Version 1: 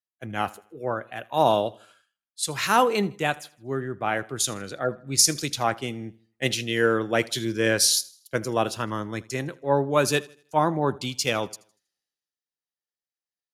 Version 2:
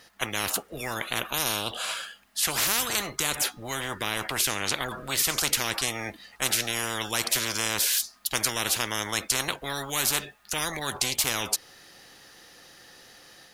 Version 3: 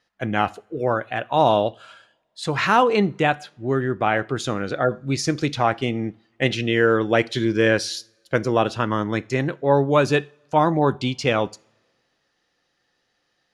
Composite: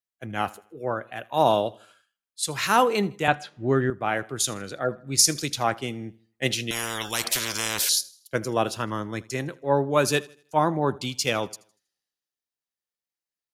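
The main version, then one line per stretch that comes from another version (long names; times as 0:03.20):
1
0:03.28–0:03.90: punch in from 3
0:06.71–0:07.89: punch in from 2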